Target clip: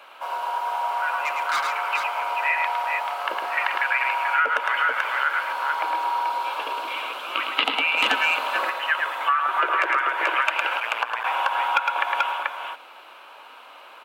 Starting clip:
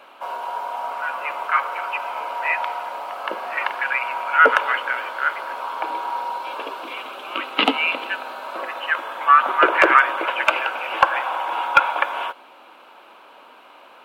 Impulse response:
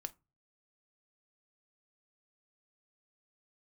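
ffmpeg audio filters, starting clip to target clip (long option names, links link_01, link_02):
-filter_complex "[0:a]asettb=1/sr,asplit=3[link_01][link_02][link_03];[link_01]atrim=end=1.214[link_04];[link_02]atrim=start=1.21:end=1.7,asetpts=PTS-STARTPTS,afade=type=in:duration=0.004:curve=qsin,afade=type=out:start_time=0.486:duration=0.004:curve=qsin,volume=20.5dB,asoftclip=hard,volume=-20.5dB[link_05];[link_03]atrim=start=1.696[link_06];[link_04][link_05]acrossfade=duration=0.004:curve1=hsin:curve2=qsin[link_07];[link_07][link_06]acrossfade=duration=0.004:curve1=qsin:curve2=hsin,aecho=1:1:108|435:0.562|0.501,acompressor=threshold=-18dB:ratio=10,asplit=3[link_08][link_09][link_10];[link_08]afade=type=out:start_time=10.79:duration=0.02[link_11];[link_09]aeval=exprs='val(0)*sin(2*PI*58*n/s)':channel_layout=same,afade=type=in:start_time=10.79:duration=0.02,afade=type=out:start_time=11.23:duration=0.02[link_12];[link_10]afade=type=in:start_time=11.23:duration=0.02[link_13];[link_11][link_12][link_13]amix=inputs=3:normalize=0,highpass=frequency=920:poles=1,asettb=1/sr,asplit=3[link_14][link_15][link_16];[link_14]atrim=end=7.974[link_17];[link_15]atrim=start=7.97:end=8.7,asetpts=PTS-STARTPTS,afade=type=in:duration=0.004:curve=qsin,afade=type=out:start_time=0.726:duration=0.004:curve=qsin,aeval=exprs='0.355*(cos(1*acos(clip(val(0)/0.355,-1,1)))-cos(1*PI/2))+0.0447*(cos(5*acos(clip(val(0)/0.355,-1,1)))-cos(5*PI/2))':channel_layout=same[link_18];[link_16]atrim=start=8.696[link_19];[link_17][link_18]acrossfade=duration=0.004:curve1=hsin:curve2=qsin[link_20];[link_20][link_19]acrossfade=duration=0.004:curve1=qsin:curve2=hsin,volume=2dB"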